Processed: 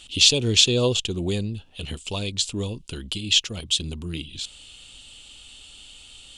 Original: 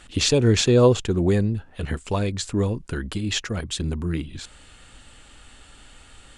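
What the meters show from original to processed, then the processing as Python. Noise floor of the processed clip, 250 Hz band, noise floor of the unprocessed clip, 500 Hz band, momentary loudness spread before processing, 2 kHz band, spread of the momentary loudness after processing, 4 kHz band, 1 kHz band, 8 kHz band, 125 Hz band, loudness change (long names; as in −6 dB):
−47 dBFS, −6.0 dB, −50 dBFS, −6.5 dB, 14 LU, +1.0 dB, 18 LU, +8.5 dB, −8.0 dB, +4.5 dB, −6.0 dB, 0.0 dB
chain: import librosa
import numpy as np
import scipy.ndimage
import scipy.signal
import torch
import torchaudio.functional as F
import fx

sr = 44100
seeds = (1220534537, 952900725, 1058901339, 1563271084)

y = fx.high_shelf_res(x, sr, hz=2300.0, db=9.5, q=3.0)
y = F.gain(torch.from_numpy(y), -6.0).numpy()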